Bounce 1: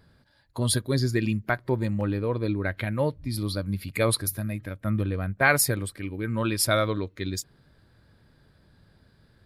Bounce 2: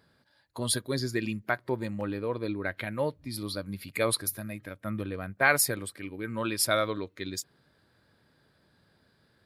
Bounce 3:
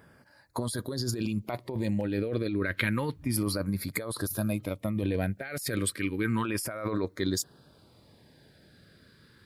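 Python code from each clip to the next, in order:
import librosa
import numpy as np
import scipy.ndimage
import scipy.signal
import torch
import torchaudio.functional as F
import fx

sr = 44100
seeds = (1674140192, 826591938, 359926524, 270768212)

y1 = fx.highpass(x, sr, hz=280.0, slope=6)
y1 = y1 * 10.0 ** (-2.0 / 20.0)
y2 = fx.filter_lfo_notch(y1, sr, shape='saw_down', hz=0.31, low_hz=550.0, high_hz=4300.0, q=1.1)
y2 = fx.over_compress(y2, sr, threshold_db=-36.0, ratio=-1.0)
y2 = y2 * 10.0 ** (5.5 / 20.0)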